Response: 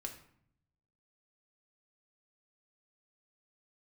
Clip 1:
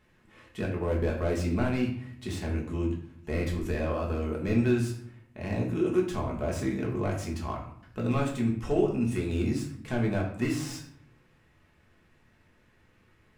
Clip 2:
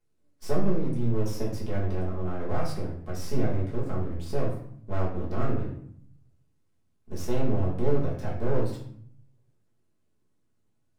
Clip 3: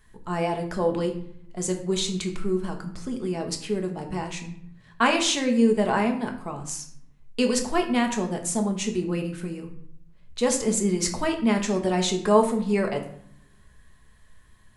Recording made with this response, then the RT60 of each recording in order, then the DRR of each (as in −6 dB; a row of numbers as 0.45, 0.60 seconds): 3; 0.60, 0.60, 0.65 seconds; −2.0, −6.5, 3.0 decibels